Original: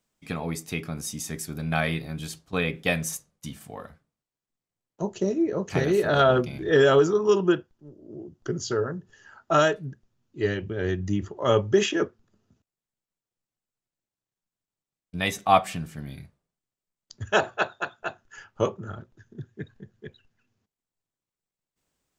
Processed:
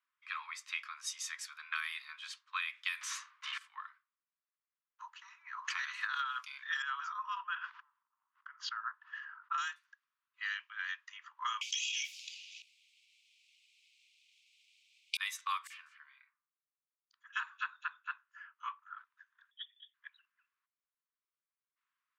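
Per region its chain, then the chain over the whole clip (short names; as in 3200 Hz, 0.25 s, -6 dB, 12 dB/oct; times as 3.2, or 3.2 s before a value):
3.01–3.58 high shelf 3300 Hz -11.5 dB + overdrive pedal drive 33 dB, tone 3600 Hz, clips at -23.5 dBFS
5.1–6.26 high shelf 2100 Hz -5 dB + sustainer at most 49 dB/s
6.82–9.58 tape spacing loss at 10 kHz 34 dB + sustainer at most 49 dB/s
11.61–15.17 steep high-pass 2300 Hz 96 dB/oct + fast leveller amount 100%
15.67–18.98 HPF 1100 Hz 6 dB/oct + high shelf 2700 Hz -11 dB + bands offset in time highs, lows 30 ms, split 4000 Hz
19.51–19.94 inverted band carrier 3500 Hz + differentiator
whole clip: steep high-pass 1000 Hz 96 dB/oct; low-pass opened by the level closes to 1900 Hz, open at -25.5 dBFS; compressor 16:1, threshold -33 dBFS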